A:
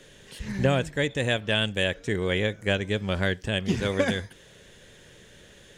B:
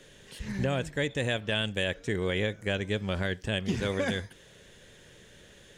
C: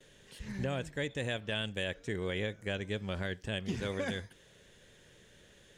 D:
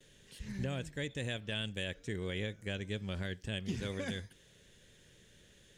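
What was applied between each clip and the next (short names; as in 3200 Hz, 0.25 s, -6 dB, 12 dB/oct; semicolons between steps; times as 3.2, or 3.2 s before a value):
limiter -16 dBFS, peak gain reduction 5.5 dB; gain -2.5 dB
gate with hold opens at -47 dBFS; gain -6 dB
bell 860 Hz -7 dB 2.4 oct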